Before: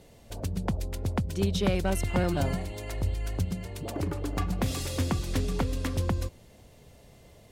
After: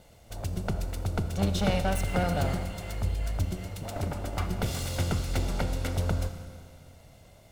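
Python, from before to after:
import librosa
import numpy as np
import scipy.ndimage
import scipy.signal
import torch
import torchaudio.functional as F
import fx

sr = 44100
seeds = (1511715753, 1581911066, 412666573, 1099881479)

y = fx.lower_of_two(x, sr, delay_ms=1.4)
y = fx.rev_schroeder(y, sr, rt60_s=2.1, comb_ms=27, drr_db=8.5)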